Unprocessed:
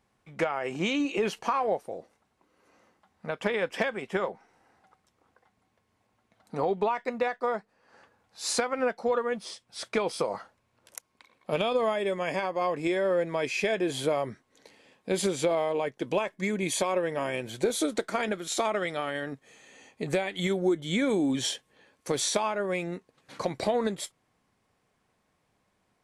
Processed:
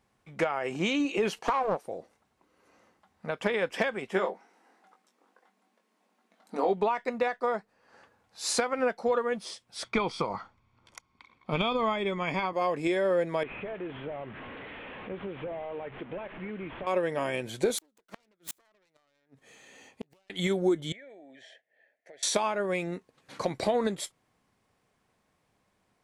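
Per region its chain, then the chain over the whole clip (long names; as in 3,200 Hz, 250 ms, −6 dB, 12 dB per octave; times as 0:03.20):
0:01.39–0:01.84: high-pass filter 310 Hz 6 dB per octave + highs frequency-modulated by the lows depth 0.5 ms
0:04.12–0:06.73: linear-phase brick-wall high-pass 180 Hz + double-tracking delay 21 ms −5.5 dB
0:09.84–0:12.53: low-pass filter 4,600 Hz + low-shelf EQ 71 Hz +10.5 dB + comb filter 0.9 ms, depth 53%
0:13.43–0:16.87: linear delta modulator 16 kbit/s, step −36.5 dBFS + downward compressor 2 to 1, threshold −41 dBFS
0:17.78–0:20.30: phase distortion by the signal itself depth 0.42 ms + gate with flip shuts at −23 dBFS, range −39 dB
0:20.92–0:22.23: pair of resonant band-passes 1,100 Hz, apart 1.5 octaves + downward compressor 2.5 to 1, threshold −51 dBFS
whole clip: no processing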